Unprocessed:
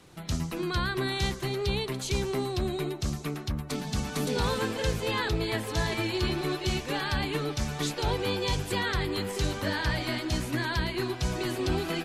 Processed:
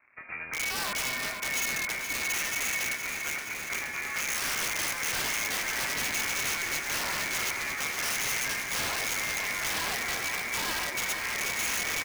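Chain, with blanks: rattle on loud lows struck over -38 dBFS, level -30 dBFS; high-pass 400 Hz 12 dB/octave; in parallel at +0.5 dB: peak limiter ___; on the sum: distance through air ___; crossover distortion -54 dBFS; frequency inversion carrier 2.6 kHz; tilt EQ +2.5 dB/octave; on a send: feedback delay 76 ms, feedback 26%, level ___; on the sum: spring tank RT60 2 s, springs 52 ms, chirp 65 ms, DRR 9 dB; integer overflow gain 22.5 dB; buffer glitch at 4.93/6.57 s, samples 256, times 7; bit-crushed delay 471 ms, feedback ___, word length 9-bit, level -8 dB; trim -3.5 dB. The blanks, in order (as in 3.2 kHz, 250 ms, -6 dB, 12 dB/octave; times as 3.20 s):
-25.5 dBFS, 160 m, -21 dB, 80%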